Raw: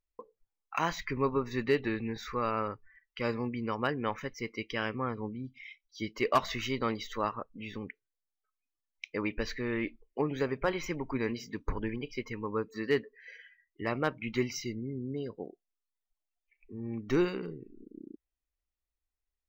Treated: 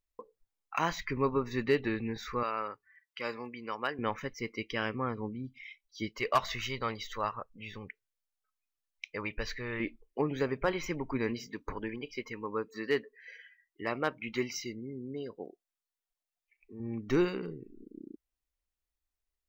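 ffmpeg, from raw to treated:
-filter_complex "[0:a]asettb=1/sr,asplit=3[a][b][c];[a]atrim=end=2.434[d];[b]atrim=start=2.43:end=3.99,asetpts=PTS-STARTPTS,afade=t=in:d=0.004:c=qsin,afade=t=out:st=1.556:d=0.004:c=qsin,highpass=f=740:p=1[e];[c]atrim=start=3.986[f];[d][e]acrossfade=d=0.004:c1=hsin:c2=qsin[g];[g][f]acrossfade=d=0.004:c1=qsin:c2=hsin,asettb=1/sr,asplit=3[h][i][j];[h]atrim=end=6.094[k];[i]atrim=start=6.09:end=9.8,asetpts=PTS-STARTPTS,afade=t=in:d=0.004:c=qsin,afade=t=out:st=3.706:d=0.004:c=qsin,equalizer=f=280:w=1.2:g=-10[l];[j]atrim=start=9.796[m];[k][l]acrossfade=d=0.004:c1=hsin:c2=qsin[n];[n][m]acrossfade=d=0.004:c1=qsin:c2=hsin,asettb=1/sr,asplit=3[o][p][q];[o]atrim=end=11.474[r];[p]atrim=start=11.47:end=16.8,asetpts=PTS-STARTPTS,afade=t=in:d=0.004:c=qsin,afade=t=out:st=5.326:d=0.004:c=qsin,lowshelf=f=170:g=-11.5[s];[q]atrim=start=16.796[t];[r][s]acrossfade=d=0.004:c1=hsin:c2=qsin[u];[u][t]acrossfade=d=0.004:c1=qsin:c2=hsin"

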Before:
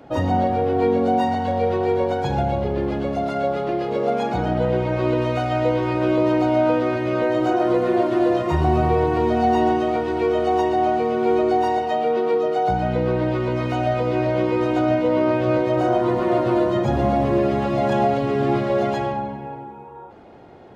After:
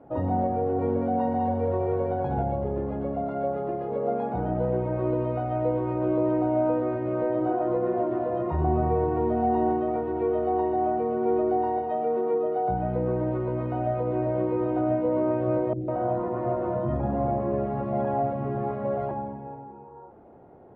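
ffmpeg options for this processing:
-filter_complex "[0:a]asettb=1/sr,asplit=3[a][b][c];[a]atrim=end=0.594[d];[b]atrim=start=0.59:end=2.44,asetpts=PTS-STARTPTS,afade=t=in:d=0.004:c=qsin,afade=t=out:st=1.846:d=0.004:c=qsin,aecho=1:1:196:0.668,atrim=end_sample=81585[e];[c]atrim=start=2.436[f];[d][e]acrossfade=d=0.004:c1=hsin:c2=qsin[g];[g][f]acrossfade=d=0.004:c1=qsin:c2=hsin,asettb=1/sr,asplit=3[h][i][j];[h]atrim=end=5.114[k];[i]atrim=start=5.11:end=6.13,asetpts=PTS-STARTPTS,afade=t=in:d=0.004:c=qsin,afade=t=out:st=1.016:d=0.004:c=qsin,bandreject=f=1.7k:w=6.7[l];[j]atrim=start=6.126[m];[k][l]acrossfade=d=0.004:c1=hsin:c2=qsin[n];[n][m]acrossfade=d=0.004:c1=qsin:c2=hsin,asettb=1/sr,asplit=3[o][p][q];[o]atrim=end=15.734[r];[p]atrim=start=15.73:end=19.11,asetpts=PTS-STARTPTS,afade=t=in:d=0.004:c=qsin,afade=t=out:st=3.376:d=0.004:c=qsin,acrossover=split=350|3600[s][t][u];[u]adelay=80[v];[t]adelay=150[w];[s][w][v]amix=inputs=3:normalize=0,atrim=end_sample=149058[x];[q]atrim=start=19.106[y];[r][x]acrossfade=d=0.004:c1=hsin:c2=qsin[z];[z][y]acrossfade=d=0.004:c1=qsin:c2=hsin,lowpass=1k,bandreject=f=50:t=h:w=6,bandreject=f=100:t=h:w=6,bandreject=f=150:t=h:w=6,bandreject=f=200:t=h:w=6,bandreject=f=250:t=h:w=6,bandreject=f=300:t=h:w=6,bandreject=f=350:t=h:w=6,volume=-5dB"

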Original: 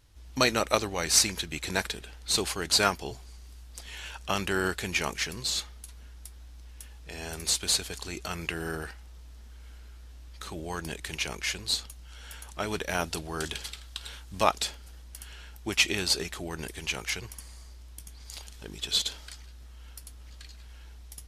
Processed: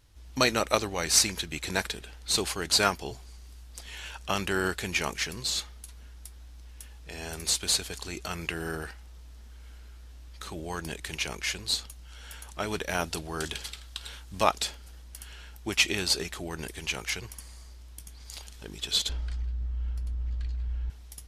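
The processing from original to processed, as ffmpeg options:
-filter_complex "[0:a]asettb=1/sr,asplit=3[a][b][c];[a]atrim=end=19.094[d];[b]atrim=start=19.09:end=20.9,asetpts=PTS-STARTPTS,afade=t=in:d=0.004:c=qsin,afade=t=out:st=1.806:d=0.004:c=qsin,aemphasis=mode=reproduction:type=riaa[e];[c]atrim=start=20.896[f];[d][e]acrossfade=d=0.004:c1=hsin:c2=qsin[g];[g][f]acrossfade=d=0.004:c1=qsin:c2=hsin"

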